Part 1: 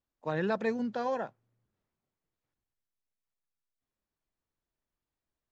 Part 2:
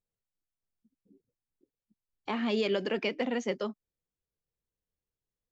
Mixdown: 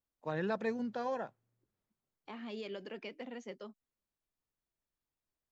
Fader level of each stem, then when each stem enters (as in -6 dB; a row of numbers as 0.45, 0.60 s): -4.5, -14.0 dB; 0.00, 0.00 s